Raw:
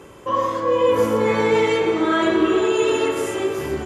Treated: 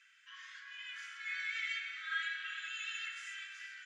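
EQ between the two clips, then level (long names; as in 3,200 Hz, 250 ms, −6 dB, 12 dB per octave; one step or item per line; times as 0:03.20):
Butterworth high-pass 1,500 Hz 72 dB per octave
low-pass filter 7,100 Hz 24 dB per octave
high-shelf EQ 3,000 Hz −11 dB
−6.5 dB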